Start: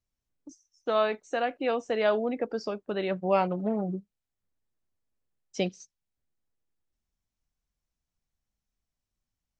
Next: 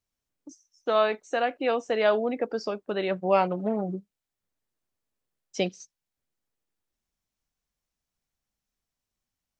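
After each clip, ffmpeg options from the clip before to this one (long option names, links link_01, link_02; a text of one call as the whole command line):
ffmpeg -i in.wav -af "lowshelf=frequency=150:gain=-8.5,volume=3dB" out.wav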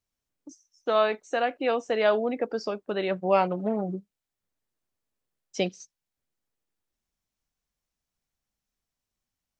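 ffmpeg -i in.wav -af anull out.wav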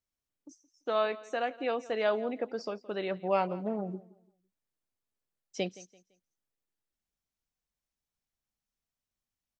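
ffmpeg -i in.wav -af "aecho=1:1:169|338|507:0.106|0.0328|0.0102,volume=-6dB" out.wav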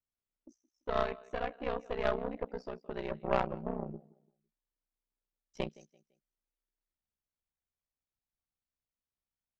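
ffmpeg -i in.wav -af "aeval=exprs='val(0)*sin(2*PI*31*n/s)':channel_layout=same,aeval=exprs='0.168*(cos(1*acos(clip(val(0)/0.168,-1,1)))-cos(1*PI/2))+0.0376*(cos(3*acos(clip(val(0)/0.168,-1,1)))-cos(3*PI/2))+0.00335*(cos(5*acos(clip(val(0)/0.168,-1,1)))-cos(5*PI/2))+0.0119*(cos(6*acos(clip(val(0)/0.168,-1,1)))-cos(6*PI/2))':channel_layout=same,aemphasis=mode=reproduction:type=75kf,volume=5dB" out.wav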